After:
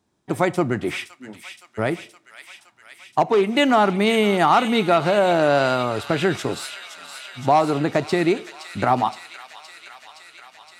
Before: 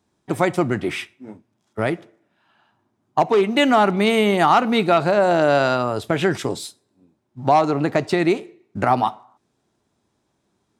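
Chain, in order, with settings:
delay with a high-pass on its return 518 ms, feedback 76%, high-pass 2,400 Hz, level −7 dB
level −1 dB

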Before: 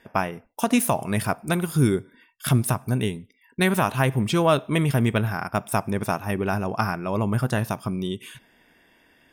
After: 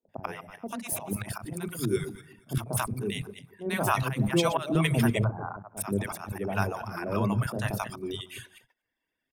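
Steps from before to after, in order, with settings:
feedback delay that plays each chunk backwards 118 ms, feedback 47%, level −8.5 dB
0:05.15–0:05.68: low-pass filter 1,100 Hz 24 dB per octave
reverb reduction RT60 0.85 s
noise gate −56 dBFS, range −23 dB
volume swells 192 ms
three-band delay without the direct sound mids, lows, highs 30/90 ms, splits 200/660 Hz

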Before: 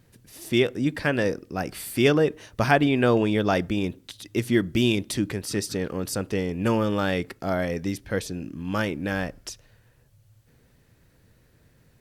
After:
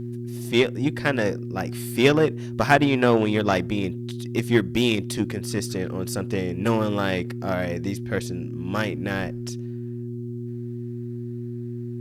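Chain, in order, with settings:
harmonic generator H 3 −24 dB, 5 −22 dB, 7 −21 dB, 8 −37 dB, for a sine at −4.5 dBFS
hum with harmonics 120 Hz, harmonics 3, −35 dBFS −3 dB per octave
level +3 dB

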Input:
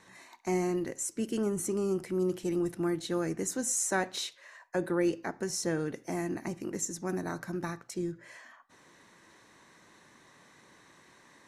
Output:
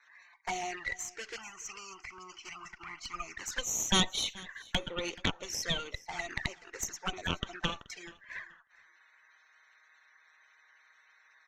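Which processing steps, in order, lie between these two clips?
spectral magnitudes quantised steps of 30 dB
high-pass filter 940 Hz 12 dB per octave
noise gate −52 dBFS, range −12 dB
Butterworth low-pass 6,900 Hz 48 dB per octave
parametric band 1,700 Hz +13 dB 1.3 octaves
harmonic generator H 3 −28 dB, 5 −18 dB, 6 −11 dB, 7 −44 dB, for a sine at −9.5 dBFS
flanger swept by the level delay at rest 7.2 ms, full sweep at −29 dBFS
0:01.36–0:03.37: phaser with its sweep stopped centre 2,500 Hz, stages 8
repeating echo 429 ms, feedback 17%, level −21.5 dB

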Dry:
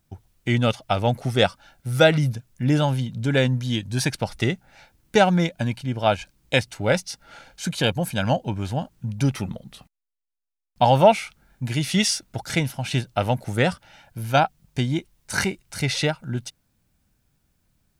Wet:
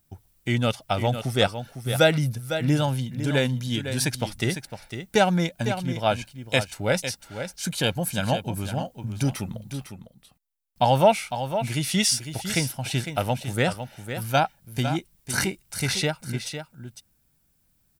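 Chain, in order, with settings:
high-shelf EQ 7,900 Hz +11.5 dB
notch filter 6,500 Hz, Q 28
on a send: single-tap delay 504 ms −9.5 dB
on the sum: level −3 dB

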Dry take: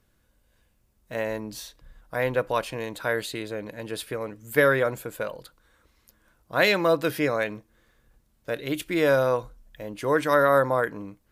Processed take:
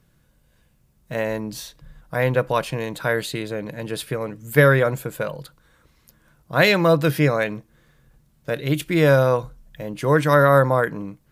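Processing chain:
parametric band 150 Hz +14 dB 0.47 octaves
level +4 dB

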